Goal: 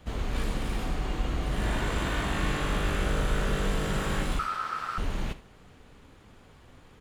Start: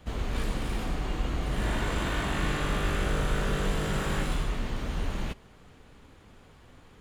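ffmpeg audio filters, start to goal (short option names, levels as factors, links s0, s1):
-filter_complex "[0:a]asettb=1/sr,asplit=3[s0][s1][s2];[s0]atrim=end=4.394[s3];[s1]atrim=start=4.39:end=4.98,asetpts=PTS-STARTPTS,afade=t=in:d=0.004:c=qsin,afade=t=out:st=0.586:d=0.004:c=qsin,aeval=exprs='val(0)*sin(2*PI*1300*n/s)':c=same[s4];[s2]atrim=start=4.976[s5];[s3][s4]acrossfade=d=0.004:c1=hsin:c2=qsin[s6];[s6][s5]acrossfade=d=0.004:c1=qsin:c2=hsin,asplit=2[s7][s8];[s8]aecho=0:1:44|76:0.158|0.141[s9];[s7][s9]amix=inputs=2:normalize=0"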